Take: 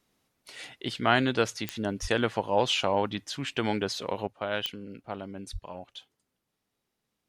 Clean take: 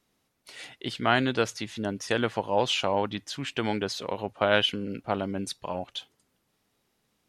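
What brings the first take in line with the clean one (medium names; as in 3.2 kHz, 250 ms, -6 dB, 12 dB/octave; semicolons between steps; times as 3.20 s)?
de-click; de-plosive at 2.01/5.52 s; gain correction +8.5 dB, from 4.27 s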